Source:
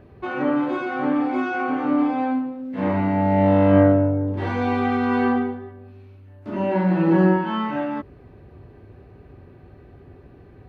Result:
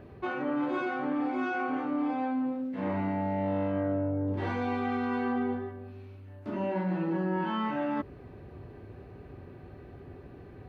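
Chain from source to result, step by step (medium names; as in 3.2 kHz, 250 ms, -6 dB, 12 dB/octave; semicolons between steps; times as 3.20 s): bass shelf 71 Hz -5.5 dB; reverse; compression 6:1, threshold -28 dBFS, peak gain reduction 16 dB; reverse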